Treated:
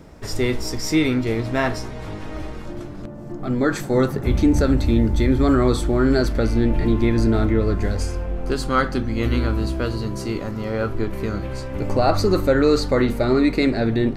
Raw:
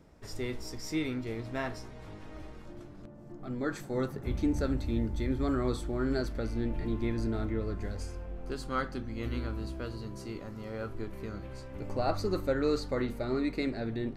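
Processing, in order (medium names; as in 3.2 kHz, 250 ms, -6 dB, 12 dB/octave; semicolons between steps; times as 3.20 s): 10.51–11.13 s: peaking EQ 9.6 kHz -4.5 dB 1.2 oct; in parallel at +2 dB: peak limiter -24.5 dBFS, peak gain reduction 7.5 dB; on the sum: trim +7.5 dB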